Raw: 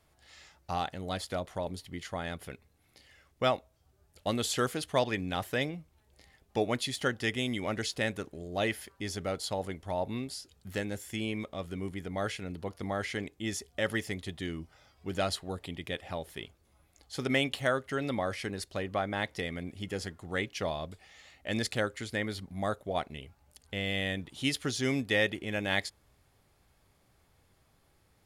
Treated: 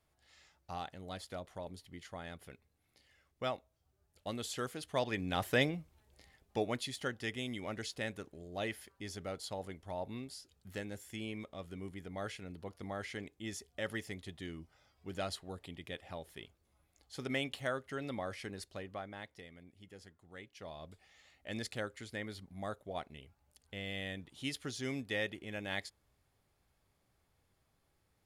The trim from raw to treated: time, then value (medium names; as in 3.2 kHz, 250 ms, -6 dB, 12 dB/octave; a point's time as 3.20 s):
4.76 s -9.5 dB
5.58 s +1.5 dB
7.04 s -8 dB
18.63 s -8 dB
19.51 s -18.5 dB
20.51 s -18.5 dB
20.92 s -9 dB